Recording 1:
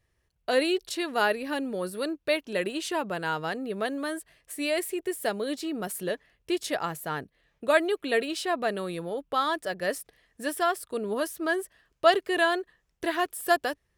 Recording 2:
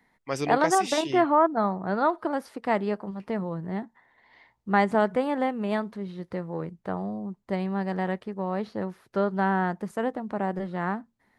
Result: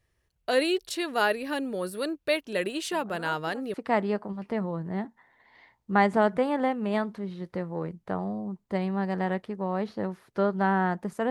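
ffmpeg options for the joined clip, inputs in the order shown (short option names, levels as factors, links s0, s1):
-filter_complex "[1:a]asplit=2[s0][s1];[0:a]apad=whole_dur=11.3,atrim=end=11.3,atrim=end=3.742[s2];[s1]atrim=start=2.518:end=10.08[s3];[s0]atrim=start=1.7:end=2.52,asetpts=PTS-STARTPTS,volume=0.133,afade=t=in:d=0.004:c=hsin,afade=t=out:st=0.816:d=0.004:c=hsin,adelay=2920[s4];[s2][s3]acrossfade=d=0.004:c1=hsin:c2=hsin[s5];[s5][s4]amix=inputs=2:normalize=0"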